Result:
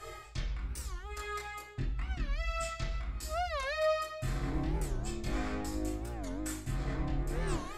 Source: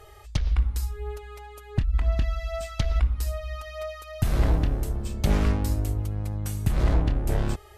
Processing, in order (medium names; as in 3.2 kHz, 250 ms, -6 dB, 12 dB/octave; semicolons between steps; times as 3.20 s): treble shelf 10 kHz -10.5 dB; reverse; compression 10:1, threshold -34 dBFS, peak gain reduction 18 dB; reverse; chorus voices 6, 0.4 Hz, delay 24 ms, depth 2 ms; reverberation RT60 0.50 s, pre-delay 3 ms, DRR -4.5 dB; warped record 45 rpm, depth 250 cents; trim +7 dB